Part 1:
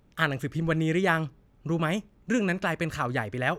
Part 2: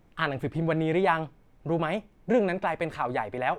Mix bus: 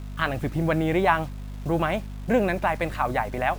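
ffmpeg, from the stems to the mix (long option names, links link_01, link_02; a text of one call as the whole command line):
ffmpeg -i stem1.wav -i stem2.wav -filter_complex "[0:a]acrossover=split=220[link_01][link_02];[link_02]acompressor=threshold=-31dB:ratio=6[link_03];[link_01][link_03]amix=inputs=2:normalize=0,volume=-12dB[link_04];[1:a]dynaudnorm=framelen=150:gausssize=3:maxgain=5dB,aeval=exprs='val(0)+0.0224*(sin(2*PI*50*n/s)+sin(2*PI*2*50*n/s)/2+sin(2*PI*3*50*n/s)/3+sin(2*PI*4*50*n/s)/4+sin(2*PI*5*50*n/s)/5)':channel_layout=same,volume=-1dB,asplit=2[link_05][link_06];[link_06]apad=whole_len=158027[link_07];[link_04][link_07]sidechaingate=range=-33dB:threshold=-27dB:ratio=16:detection=peak[link_08];[link_08][link_05]amix=inputs=2:normalize=0,equalizer=frequency=440:width=3.6:gain=-6,acrusher=bits=7:mix=0:aa=0.000001" out.wav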